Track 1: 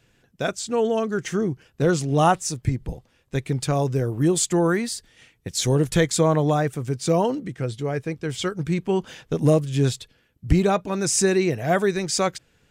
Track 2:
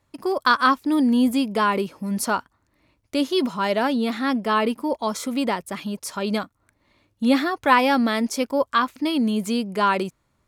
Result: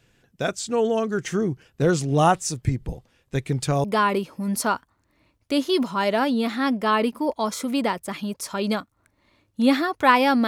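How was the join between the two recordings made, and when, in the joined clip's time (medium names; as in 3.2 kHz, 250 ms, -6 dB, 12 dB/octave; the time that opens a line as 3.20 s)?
track 1
3.84 s: go over to track 2 from 1.47 s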